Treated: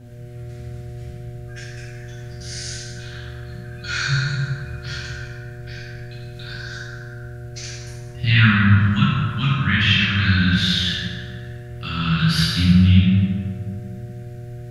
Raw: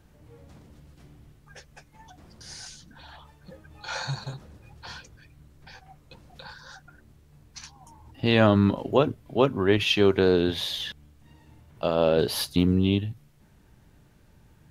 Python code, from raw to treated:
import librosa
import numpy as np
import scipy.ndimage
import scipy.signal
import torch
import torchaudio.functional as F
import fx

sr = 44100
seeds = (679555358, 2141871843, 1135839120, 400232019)

y = scipy.signal.sosfilt(scipy.signal.cheby1(3, 1.0, [170.0, 1500.0], 'bandstop', fs=sr, output='sos'), x)
y = fx.env_lowpass_down(y, sr, base_hz=2900.0, full_db=-23.0)
y = fx.dmg_buzz(y, sr, base_hz=120.0, harmonics=6, level_db=-48.0, tilt_db=-9, odd_only=False)
y = fx.rev_plate(y, sr, seeds[0], rt60_s=2.3, hf_ratio=0.45, predelay_ms=0, drr_db=-9.5)
y = y * librosa.db_to_amplitude(4.0)